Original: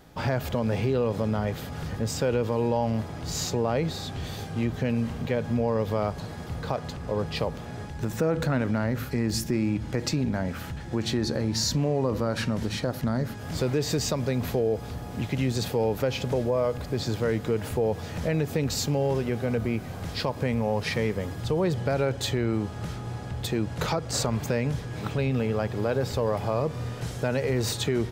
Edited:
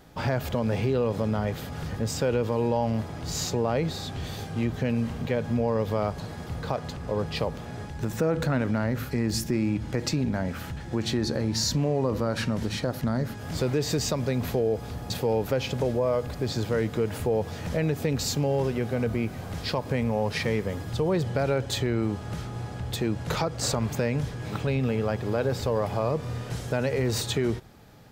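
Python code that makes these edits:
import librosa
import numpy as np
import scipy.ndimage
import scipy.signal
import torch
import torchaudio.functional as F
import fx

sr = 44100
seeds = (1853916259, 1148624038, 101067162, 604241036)

y = fx.edit(x, sr, fx.cut(start_s=15.1, length_s=0.51), tone=tone)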